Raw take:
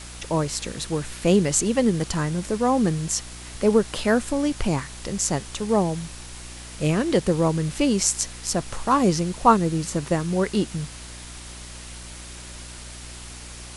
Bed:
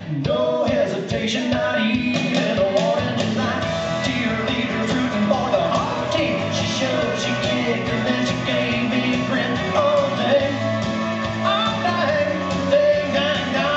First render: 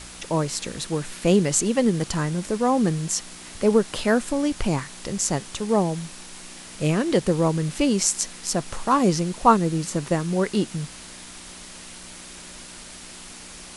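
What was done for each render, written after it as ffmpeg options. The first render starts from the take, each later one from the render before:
-af "bandreject=f=60:t=h:w=4,bandreject=f=120:t=h:w=4"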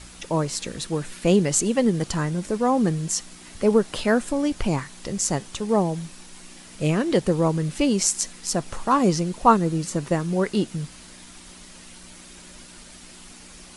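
-af "afftdn=nr=6:nf=-42"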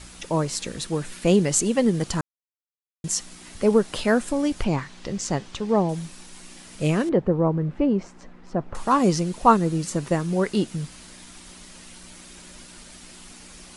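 -filter_complex "[0:a]asettb=1/sr,asplit=3[a][b][c];[a]atrim=end=4.644[d];[b]atrim=start=4.64:end=5.89,asetpts=PTS-STARTPTS,afade=t=in:d=0.004:c=qsin,afade=t=out:st=1.246:d=0.004:c=qsin,lowpass=5.1k[e];[c]atrim=start=5.886[f];[d][e]acrossfade=d=0.004:c1=hsin:c2=qsin[g];[g][f]acrossfade=d=0.004:c1=qsin:c2=hsin,asettb=1/sr,asplit=3[h][i][j];[h]atrim=end=7.094[k];[i]atrim=start=7.09:end=8.75,asetpts=PTS-STARTPTS,afade=t=in:d=0.004:c=qsin,afade=t=out:st=1.656:d=0.004:c=qsin,lowpass=1.2k[l];[j]atrim=start=8.746[m];[k][l]acrossfade=d=0.004:c1=hsin:c2=qsin[n];[n][m]acrossfade=d=0.004:c1=qsin:c2=hsin,asplit=3[o][p][q];[o]atrim=end=2.21,asetpts=PTS-STARTPTS,afade=t=out:st=2.206:d=0.004:c=hsin[r];[p]atrim=start=2.21:end=3.04,asetpts=PTS-STARTPTS,volume=0[s];[q]atrim=start=3.04,asetpts=PTS-STARTPTS,afade=t=in:d=0.004:c=hsin[t];[r][s][t]concat=n=3:v=0:a=1"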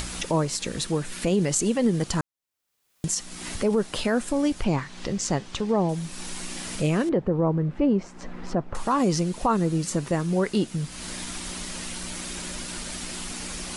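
-af "acompressor=mode=upward:threshold=-23dB:ratio=2.5,alimiter=limit=-13.5dB:level=0:latency=1:release=42"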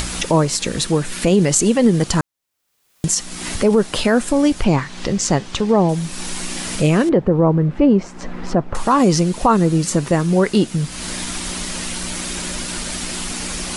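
-af "volume=8.5dB"

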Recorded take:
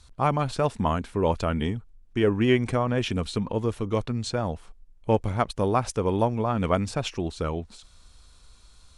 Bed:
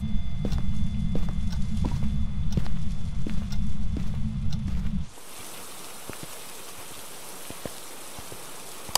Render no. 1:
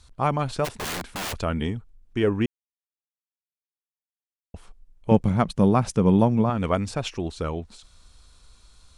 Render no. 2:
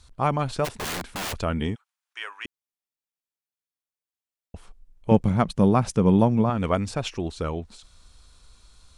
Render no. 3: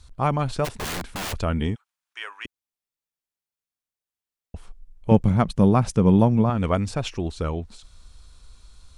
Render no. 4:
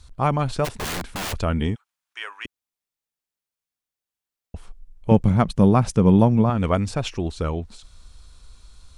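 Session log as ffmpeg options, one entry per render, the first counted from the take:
-filter_complex "[0:a]asplit=3[a][b][c];[a]afade=t=out:st=0.64:d=0.02[d];[b]aeval=exprs='(mod(18.8*val(0)+1,2)-1)/18.8':c=same,afade=t=in:st=0.64:d=0.02,afade=t=out:st=1.32:d=0.02[e];[c]afade=t=in:st=1.32:d=0.02[f];[d][e][f]amix=inputs=3:normalize=0,asettb=1/sr,asplit=3[g][h][i];[g]atrim=end=5.114[j];[h]atrim=start=5.11:end=6.5,asetpts=PTS-STARTPTS,afade=t=in:d=0.004:c=qsin,afade=t=out:st=1.386:d=0.004:c=qsin,equalizer=f=180:w=1.5:g=14[k];[i]atrim=start=6.496[l];[j][k]acrossfade=d=0.004:c1=hsin:c2=qsin[m];[m][l]acrossfade=d=0.004:c1=qsin:c2=hsin,asplit=3[n][o][p];[n]atrim=end=2.46,asetpts=PTS-STARTPTS,afade=t=out:st=2.456:d=0.004:c=hsin[q];[o]atrim=start=2.46:end=4.54,asetpts=PTS-STARTPTS,volume=0[r];[p]atrim=start=4.54,asetpts=PTS-STARTPTS,afade=t=in:d=0.004:c=hsin[s];[q][r][s]concat=n=3:v=0:a=1"
-filter_complex "[0:a]asplit=3[a][b][c];[a]afade=t=out:st=1.74:d=0.02[d];[b]highpass=f=1k:w=0.5412,highpass=f=1k:w=1.3066,afade=t=in:st=1.74:d=0.02,afade=t=out:st=2.45:d=0.02[e];[c]afade=t=in:st=2.45:d=0.02[f];[d][e][f]amix=inputs=3:normalize=0"
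-af "lowshelf=f=120:g=6.5"
-af "volume=1.5dB,alimiter=limit=-3dB:level=0:latency=1"

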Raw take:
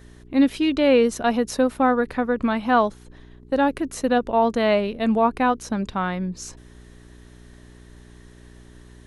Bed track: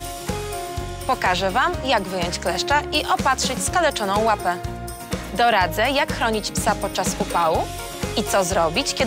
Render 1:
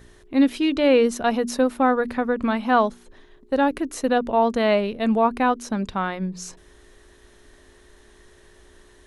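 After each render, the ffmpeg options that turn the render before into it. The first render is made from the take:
-af "bandreject=f=60:t=h:w=4,bandreject=f=120:t=h:w=4,bandreject=f=180:t=h:w=4,bandreject=f=240:t=h:w=4,bandreject=f=300:t=h:w=4"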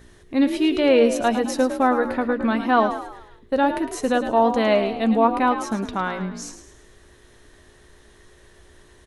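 -filter_complex "[0:a]asplit=2[a][b];[b]adelay=13,volume=-12.5dB[c];[a][c]amix=inputs=2:normalize=0,asplit=6[d][e][f][g][h][i];[e]adelay=107,afreqshift=52,volume=-10dB[j];[f]adelay=214,afreqshift=104,volume=-17.1dB[k];[g]adelay=321,afreqshift=156,volume=-24.3dB[l];[h]adelay=428,afreqshift=208,volume=-31.4dB[m];[i]adelay=535,afreqshift=260,volume=-38.5dB[n];[d][j][k][l][m][n]amix=inputs=6:normalize=0"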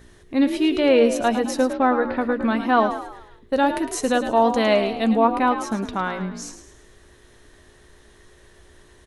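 -filter_complex "[0:a]asettb=1/sr,asplit=3[a][b][c];[a]atrim=end=1.734[d];[b]atrim=start=1.73:end=2.17,asetpts=PTS-STARTPTS,afade=t=in:d=0.004:c=qsin,afade=t=out:st=0.436:d=0.004:c=qsin,lowpass=f=4.4k:w=0.5412,lowpass=f=4.4k:w=1.3066[e];[c]atrim=start=2.166[f];[d][e]acrossfade=d=0.004:c1=hsin:c2=qsin[g];[g][f]acrossfade=d=0.004:c1=qsin:c2=hsin,asettb=1/sr,asplit=3[h][i][j];[h]atrim=end=3.534[k];[i]atrim=start=3.53:end=5.13,asetpts=PTS-STARTPTS,afade=t=in:d=0.004:c=qsin,afade=t=out:st=1.596:d=0.004:c=qsin,equalizer=f=7.8k:w=0.45:g=6[l];[j]atrim=start=5.126[m];[k][l]acrossfade=d=0.004:c1=hsin:c2=qsin[n];[n][m]acrossfade=d=0.004:c1=qsin:c2=hsin"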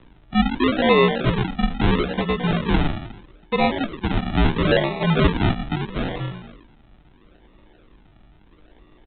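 -af "aresample=8000,acrusher=samples=10:mix=1:aa=0.000001:lfo=1:lforange=10:lforate=0.76,aresample=44100,afreqshift=-55"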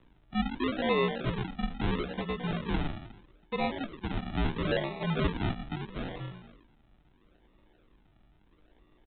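-af "volume=-11.5dB"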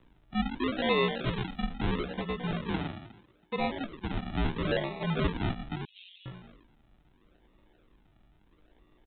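-filter_complex "[0:a]asettb=1/sr,asplit=3[a][b][c];[a]atrim=end=0.774[d];[b]atrim=start=0.77:end=1.63,asetpts=PTS-STARTPTS,afade=t=in:d=0.004:c=qsin,afade=t=out:st=0.856:d=0.004:c=qsin,highshelf=f=3.6k:g=9[e];[c]atrim=start=1.626[f];[d][e]acrossfade=d=0.004:c1=hsin:c2=qsin[g];[g][f]acrossfade=d=0.004:c1=qsin:c2=hsin,asettb=1/sr,asplit=3[h][i][j];[h]atrim=end=2.714[k];[i]atrim=start=2.71:end=3.58,asetpts=PTS-STARTPTS,afade=t=in:d=0.004:c=qsin,afade=t=out:st=0.866:d=0.004:c=qsin,highpass=91[l];[j]atrim=start=3.576[m];[k][l]acrossfade=d=0.004:c1=hsin:c2=qsin[n];[n][m]acrossfade=d=0.004:c1=qsin:c2=hsin,asettb=1/sr,asplit=3[o][p][q];[o]atrim=end=5.854[r];[p]atrim=start=5.85:end=6.26,asetpts=PTS-STARTPTS,afade=t=in:d=0.004:c=qsin,afade=t=out:st=0.406:d=0.004:c=qsin,asuperpass=centerf=3400:order=8:qfactor=1.8[s];[q]atrim=start=6.256[t];[r][s]acrossfade=d=0.004:c1=hsin:c2=qsin[u];[u][t]acrossfade=d=0.004:c1=qsin:c2=hsin"

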